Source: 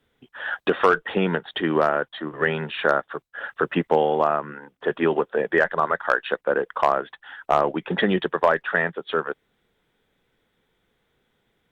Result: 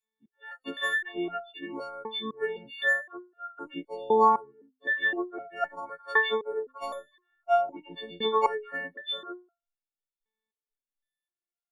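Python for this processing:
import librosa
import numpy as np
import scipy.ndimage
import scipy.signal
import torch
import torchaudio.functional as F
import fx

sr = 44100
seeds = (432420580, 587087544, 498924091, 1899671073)

y = fx.freq_snap(x, sr, grid_st=4)
y = fx.noise_reduce_blind(y, sr, reduce_db=25)
y = fx.resonator_held(y, sr, hz=3.9, low_hz=220.0, high_hz=690.0)
y = y * 10.0 ** (5.0 / 20.0)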